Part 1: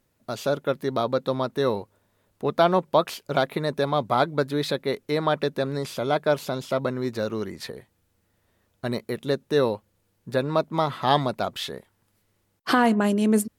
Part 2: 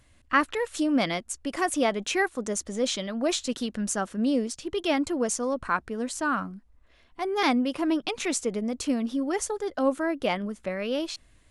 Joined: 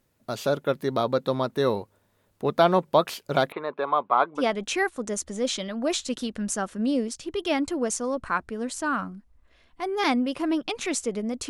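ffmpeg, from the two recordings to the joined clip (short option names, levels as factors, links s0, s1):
-filter_complex "[0:a]asettb=1/sr,asplit=3[s0][s1][s2];[s0]atrim=end=3.524[s3];[s1]atrim=start=3.52:end=4.43,asetpts=PTS-STARTPTS,afade=t=in:d=0.004:c=qsin,afade=t=out:st=0.906:d=0.004:c=qsin,highpass=470,equalizer=f=590:t=q:w=4:g=-3,equalizer=f=1100:t=q:w=4:g=8,equalizer=f=1900:t=q:w=4:g=-7,lowpass=f=2700:w=0.5412,lowpass=f=2700:w=1.3066[s4];[s2]atrim=start=4.426[s5];[s3][s4]acrossfade=d=0.004:c1=hsin:c2=qsin[s6];[s6][s5]acrossfade=d=0.004:c1=qsin:c2=hsin,apad=whole_dur=11.49,atrim=end=11.49,atrim=end=4.43,asetpts=PTS-STARTPTS[s7];[1:a]atrim=start=1.74:end=8.88,asetpts=PTS-STARTPTS[s8];[s7][s8]acrossfade=d=0.08:c1=tri:c2=tri"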